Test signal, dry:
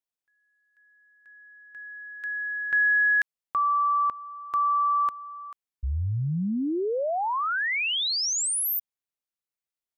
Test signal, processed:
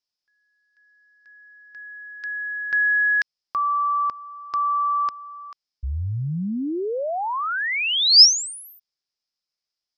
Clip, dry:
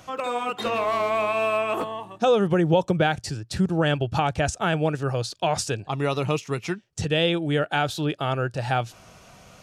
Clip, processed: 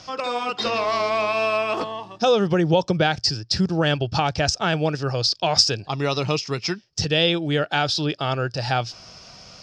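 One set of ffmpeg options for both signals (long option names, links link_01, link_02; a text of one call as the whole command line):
ffmpeg -i in.wav -af "lowpass=frequency=5100:width_type=q:width=9,volume=1dB" out.wav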